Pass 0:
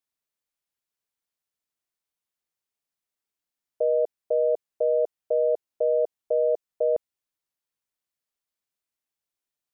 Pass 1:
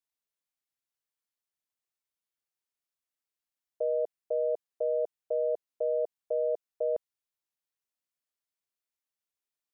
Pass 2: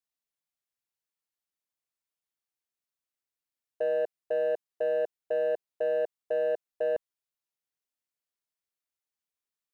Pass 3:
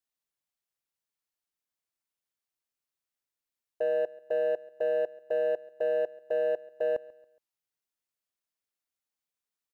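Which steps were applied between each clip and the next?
low-shelf EQ 500 Hz −4 dB; level −4.5 dB
leveller curve on the samples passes 1
repeating echo 139 ms, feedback 37%, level −21 dB

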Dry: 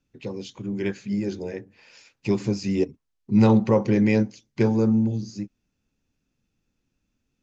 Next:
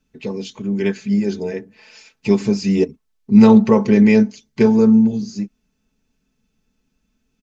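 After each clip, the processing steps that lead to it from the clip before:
comb filter 4.6 ms, depth 66%
level +5 dB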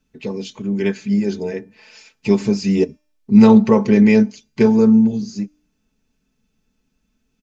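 tuned comb filter 300 Hz, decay 0.6 s, mix 30%
level +3 dB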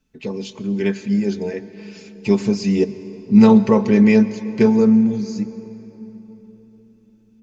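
convolution reverb RT60 3.9 s, pre-delay 105 ms, DRR 14.5 dB
level −1 dB

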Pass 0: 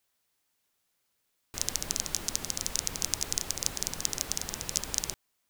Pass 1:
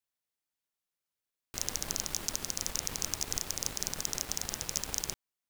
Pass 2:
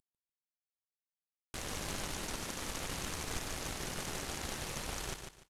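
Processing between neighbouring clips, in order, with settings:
leveller curve on the samples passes 3; level −8.5 dB
variable-slope delta modulation 64 kbit/s; repeating echo 147 ms, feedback 25%, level −6.5 dB; level +1.5 dB

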